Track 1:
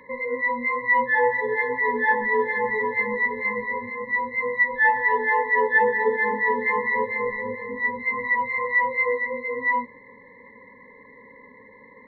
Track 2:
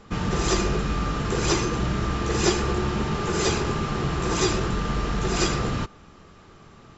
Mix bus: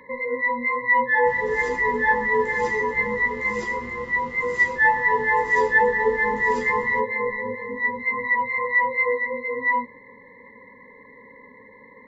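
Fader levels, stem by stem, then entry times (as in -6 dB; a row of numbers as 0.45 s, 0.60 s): +1.0 dB, -18.0 dB; 0.00 s, 1.15 s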